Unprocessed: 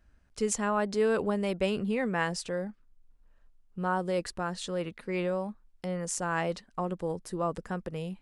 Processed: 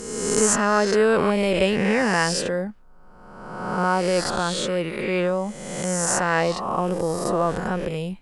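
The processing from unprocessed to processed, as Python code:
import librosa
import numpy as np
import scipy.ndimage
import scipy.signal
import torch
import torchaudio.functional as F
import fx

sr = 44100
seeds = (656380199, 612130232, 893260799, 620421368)

y = fx.spec_swells(x, sr, rise_s=1.37)
y = F.gain(torch.from_numpy(y), 7.0).numpy()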